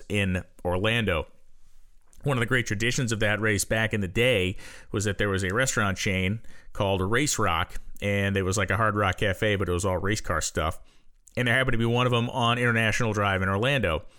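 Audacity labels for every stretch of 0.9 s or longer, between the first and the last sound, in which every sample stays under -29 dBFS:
1.220000	2.250000	silence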